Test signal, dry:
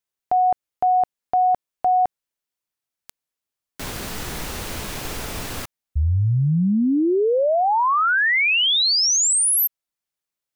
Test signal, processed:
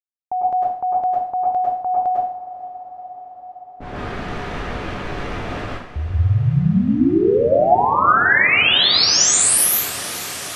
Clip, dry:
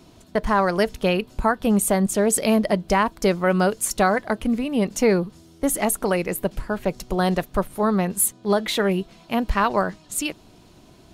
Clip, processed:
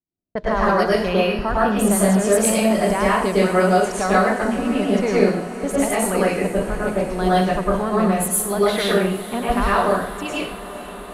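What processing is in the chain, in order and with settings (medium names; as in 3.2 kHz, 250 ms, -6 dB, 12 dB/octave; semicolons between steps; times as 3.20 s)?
in parallel at 0 dB: compression 8:1, threshold -28 dBFS; on the sum: gate -31 dBFS, range -45 dB; level-controlled noise filter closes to 510 Hz, open at -13.5 dBFS; on a send: echo that smears into a reverb 476 ms, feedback 77%, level -15.5 dB; on the sum: plate-style reverb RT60 0.55 s, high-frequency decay 1×, pre-delay 90 ms, DRR -7 dB; trim -6.5 dB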